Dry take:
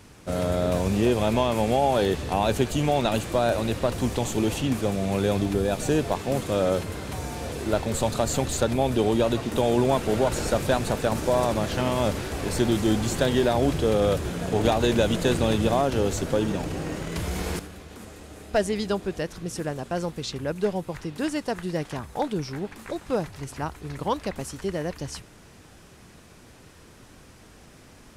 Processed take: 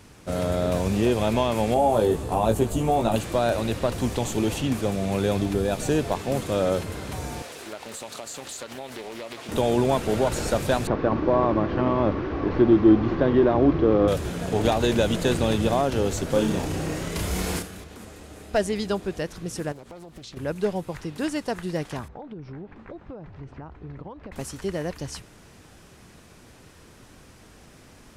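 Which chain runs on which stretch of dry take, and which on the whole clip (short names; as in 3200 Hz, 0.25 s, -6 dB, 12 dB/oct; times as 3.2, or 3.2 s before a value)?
1.74–3.16 band shelf 3000 Hz -8.5 dB 2.3 oct + doubler 18 ms -4 dB
7.42–9.49 HPF 1100 Hz 6 dB/oct + compressor 4:1, threshold -33 dBFS + Doppler distortion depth 0.43 ms
10.87–14.08 delta modulation 32 kbps, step -29.5 dBFS + LPF 1700 Hz + small resonant body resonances 320/1100 Hz, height 10 dB, ringing for 35 ms
16.31–17.84 high shelf 5100 Hz +5 dB + doubler 32 ms -3 dB
19.72–20.37 compressor 16:1, threshold -37 dBFS + Doppler distortion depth 0.87 ms
22.08–24.32 compressor 16:1, threshold -32 dBFS + tape spacing loss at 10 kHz 42 dB
whole clip: dry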